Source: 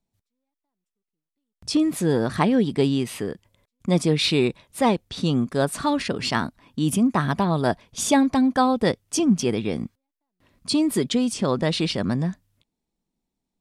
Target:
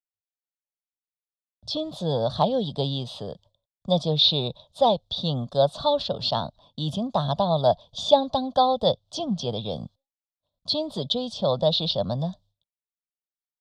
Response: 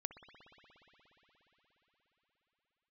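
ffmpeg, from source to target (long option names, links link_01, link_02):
-filter_complex "[0:a]firequalizer=gain_entry='entry(140,0);entry(250,-10);entry(360,-13);entry(580,9);entry(2100,-29);entry(3500,11);entry(6100,-5);entry(11000,-17)':delay=0.05:min_phase=1,agate=range=-33dB:threshold=-48dB:ratio=3:detection=peak,acrossover=split=130|1500|5200[link_01][link_02][link_03][link_04];[link_04]acompressor=threshold=-49dB:ratio=10[link_05];[link_01][link_02][link_03][link_05]amix=inputs=4:normalize=0,volume=-1.5dB"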